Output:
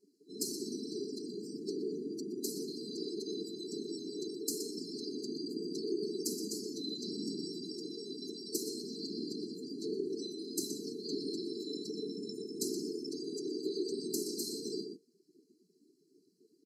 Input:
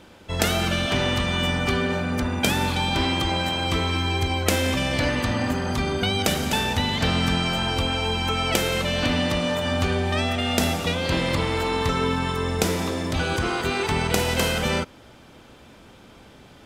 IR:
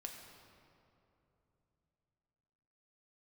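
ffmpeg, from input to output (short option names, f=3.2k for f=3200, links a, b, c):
-filter_complex "[0:a]aecho=1:1:5.5:0.77,afftfilt=real='hypot(re,im)*cos(2*PI*random(0))':imag='hypot(re,im)*sin(2*PI*random(1))':win_size=512:overlap=0.75,asplit=2[a][b];[b]adelay=122.4,volume=-7dB,highshelf=f=4k:g=-2.76[c];[a][c]amix=inputs=2:normalize=0,afftdn=nr=16:nf=-41,highpass=f=290:w=0.5412,highpass=f=290:w=1.3066,equalizer=f=760:w=3.7:g=-15,acompressor=threshold=-35dB:ratio=1.5,afftfilt=real='re*(1-between(b*sr/4096,460,4000))':imag='im*(1-between(b*sr/4096,460,4000))':win_size=4096:overlap=0.75" -ar 32000 -c:a ac3 -b:a 128k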